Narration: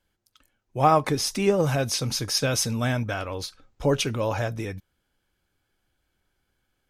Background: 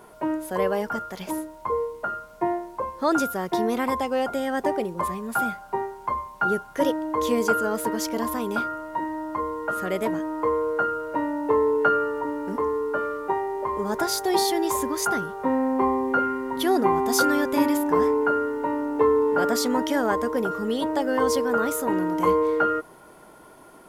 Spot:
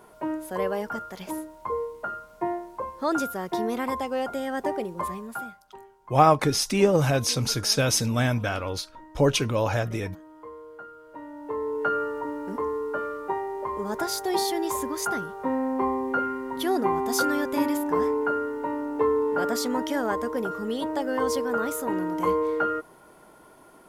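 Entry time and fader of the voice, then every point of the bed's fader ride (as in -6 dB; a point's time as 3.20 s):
5.35 s, +1.5 dB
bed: 5.19 s -3.5 dB
5.66 s -19 dB
10.94 s -19 dB
12.01 s -3.5 dB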